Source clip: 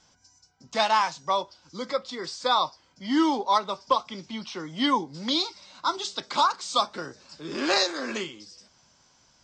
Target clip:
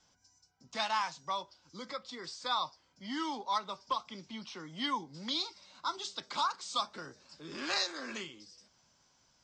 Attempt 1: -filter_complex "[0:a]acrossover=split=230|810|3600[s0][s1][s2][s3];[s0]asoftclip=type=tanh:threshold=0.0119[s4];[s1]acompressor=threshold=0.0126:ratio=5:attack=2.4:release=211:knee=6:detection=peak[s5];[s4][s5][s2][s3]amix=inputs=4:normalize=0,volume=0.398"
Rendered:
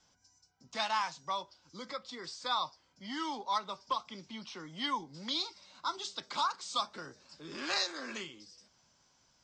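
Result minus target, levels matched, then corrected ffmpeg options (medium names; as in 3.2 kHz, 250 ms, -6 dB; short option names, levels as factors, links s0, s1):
saturation: distortion +15 dB
-filter_complex "[0:a]acrossover=split=230|810|3600[s0][s1][s2][s3];[s0]asoftclip=type=tanh:threshold=0.0422[s4];[s1]acompressor=threshold=0.0126:ratio=5:attack=2.4:release=211:knee=6:detection=peak[s5];[s4][s5][s2][s3]amix=inputs=4:normalize=0,volume=0.398"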